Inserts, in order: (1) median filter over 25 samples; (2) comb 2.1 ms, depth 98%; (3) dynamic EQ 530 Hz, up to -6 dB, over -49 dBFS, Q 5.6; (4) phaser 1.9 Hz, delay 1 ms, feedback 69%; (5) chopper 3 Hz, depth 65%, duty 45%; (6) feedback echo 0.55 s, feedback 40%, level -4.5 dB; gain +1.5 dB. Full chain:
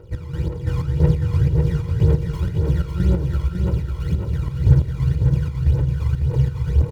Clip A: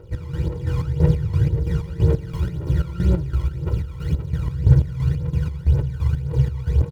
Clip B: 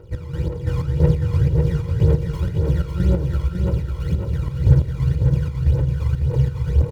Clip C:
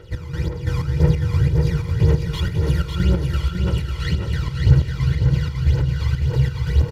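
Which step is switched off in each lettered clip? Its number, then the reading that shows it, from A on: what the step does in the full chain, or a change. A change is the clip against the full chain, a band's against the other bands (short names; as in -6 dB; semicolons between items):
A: 6, echo-to-direct -3.5 dB to none; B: 3, 500 Hz band +2.0 dB; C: 1, 2 kHz band +7.5 dB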